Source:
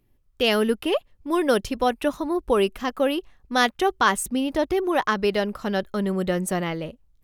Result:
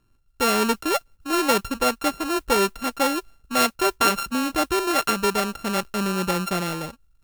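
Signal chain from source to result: sample sorter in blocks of 32 samples; modulation noise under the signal 27 dB

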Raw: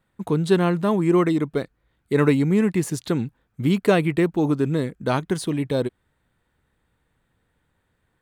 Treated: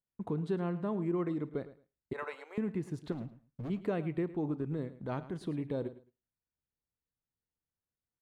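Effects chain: LPF 1100 Hz 6 dB/oct; gate with hold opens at -42 dBFS; 2.13–2.58 steep high-pass 570 Hz 36 dB/oct; 4.5–5.41 transient shaper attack -8 dB, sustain -4 dB; compressor 2:1, threshold -29 dBFS, peak gain reduction 9 dB; 3.12–3.7 overloaded stage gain 30 dB; feedback echo 0.108 s, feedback 19%, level -15.5 dB; Schroeder reverb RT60 0.33 s, combs from 26 ms, DRR 18.5 dB; gain -7 dB

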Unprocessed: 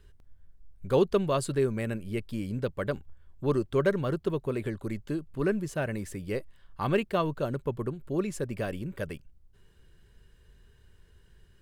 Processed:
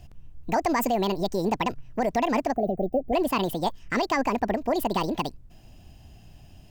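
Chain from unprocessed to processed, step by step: spectral gain 4.44–5.43, 470–9300 Hz -28 dB; speed mistake 45 rpm record played at 78 rpm; limiter -23.5 dBFS, peak gain reduction 10 dB; gain +8 dB

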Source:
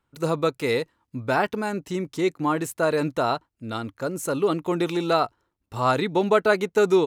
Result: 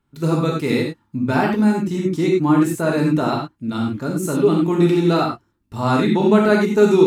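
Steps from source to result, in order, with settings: resonant low shelf 380 Hz +6.5 dB, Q 1.5; non-linear reverb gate 0.12 s flat, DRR -1.5 dB; gain -1 dB

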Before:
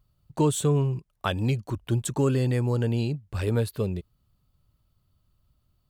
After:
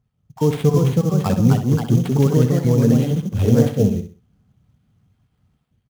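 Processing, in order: random spectral dropouts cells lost 36%; HPF 82 Hz; tone controls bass +9 dB, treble -1 dB; AGC gain up to 7.5 dB; echoes that change speed 0.393 s, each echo +2 st, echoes 2; sample-rate reducer 6300 Hz, jitter 20%; small resonant body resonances 230/450/750/3200 Hz, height 8 dB, ringing for 35 ms; on a send: feedback echo 64 ms, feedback 30%, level -9.5 dB; on the sum: gain -6 dB

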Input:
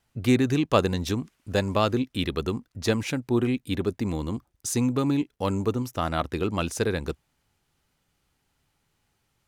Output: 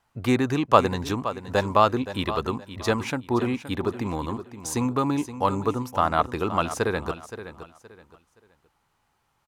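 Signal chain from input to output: bell 1000 Hz +12 dB 1.4 oct; on a send: feedback echo 0.521 s, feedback 28%, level -12.5 dB; on the sum: gain -2.5 dB

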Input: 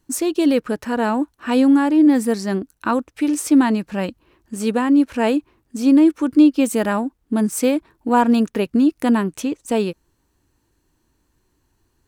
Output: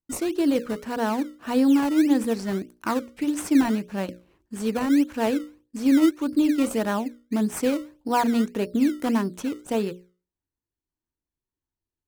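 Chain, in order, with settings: gate with hold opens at -49 dBFS; notches 60/120/180/240/300/360/420/480/540/600 Hz; in parallel at -5 dB: decimation with a swept rate 18×, swing 100% 1.7 Hz; on the sum: gain -8.5 dB

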